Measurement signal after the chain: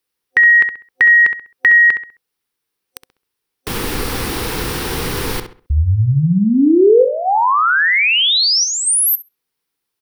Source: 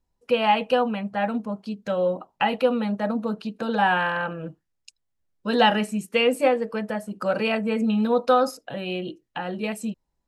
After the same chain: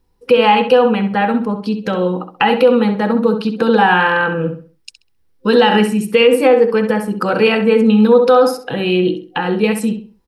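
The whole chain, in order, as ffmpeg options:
-filter_complex "[0:a]asplit=2[a][b];[b]acompressor=threshold=-29dB:ratio=6,volume=0dB[c];[a][c]amix=inputs=2:normalize=0,superequalizer=6b=1.41:7b=1.78:8b=0.398:15b=0.501,asplit=2[d][e];[e]adelay=66,lowpass=f=3.3k:p=1,volume=-8dB,asplit=2[f][g];[g]adelay=66,lowpass=f=3.3k:p=1,volume=0.32,asplit=2[h][i];[i]adelay=66,lowpass=f=3.3k:p=1,volume=0.32,asplit=2[j][k];[k]adelay=66,lowpass=f=3.3k:p=1,volume=0.32[l];[d][f][h][j][l]amix=inputs=5:normalize=0,alimiter=level_in=8dB:limit=-1dB:release=50:level=0:latency=1,volume=-1dB"

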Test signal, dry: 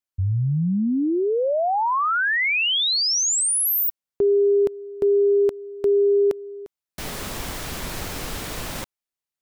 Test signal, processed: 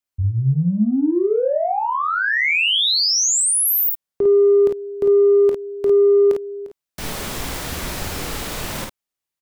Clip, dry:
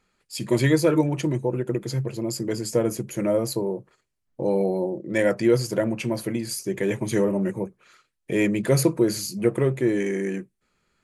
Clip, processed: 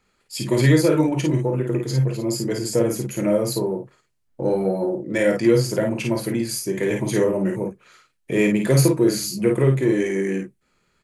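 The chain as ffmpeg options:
-filter_complex "[0:a]acrossover=split=480|2100[a][b][c];[b]acompressor=threshold=-25dB:ratio=6:knee=2.83:detection=peak[d];[a][d][c]amix=inputs=3:normalize=0,asplit=2[e][f];[f]asoftclip=type=tanh:threshold=-20dB,volume=-12dB[g];[e][g]amix=inputs=2:normalize=0,aecho=1:1:23|38|52:0.282|0.299|0.631"

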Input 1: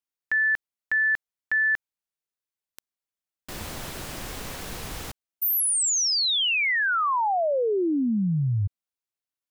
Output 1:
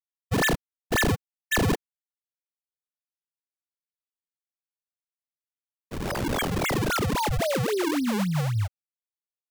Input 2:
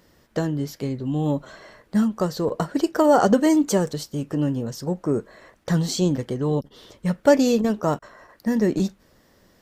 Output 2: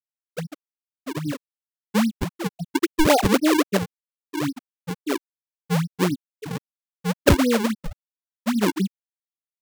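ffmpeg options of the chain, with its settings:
-af "aresample=16000,aresample=44100,afftfilt=real='re*gte(hypot(re,im),0.631)':imag='im*gte(hypot(re,im),0.631)':win_size=1024:overlap=0.75,acrusher=samples=40:mix=1:aa=0.000001:lfo=1:lforange=64:lforate=3.7"

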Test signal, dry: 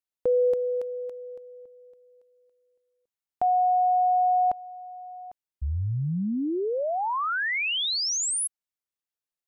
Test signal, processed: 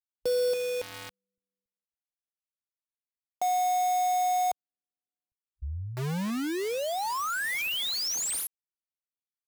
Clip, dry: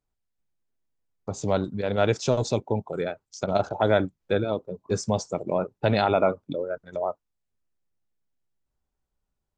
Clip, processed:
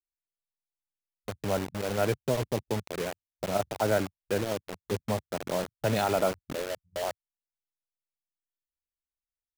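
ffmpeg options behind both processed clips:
-filter_complex "[0:a]afwtdn=0.0141,acrossover=split=120[a][b];[b]acrusher=bits=4:mix=0:aa=0.000001[c];[a][c]amix=inputs=2:normalize=0,volume=-5dB"

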